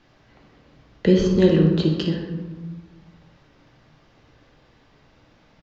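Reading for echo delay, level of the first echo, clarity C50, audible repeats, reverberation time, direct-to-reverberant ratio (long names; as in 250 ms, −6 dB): 59 ms, −10.0 dB, 4.0 dB, 1, 1.3 s, 0.5 dB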